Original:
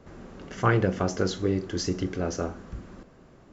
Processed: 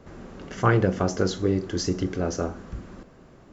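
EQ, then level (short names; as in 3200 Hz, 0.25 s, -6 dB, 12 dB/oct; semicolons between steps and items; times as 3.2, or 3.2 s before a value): dynamic EQ 2500 Hz, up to -3 dB, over -44 dBFS, Q 1; +2.5 dB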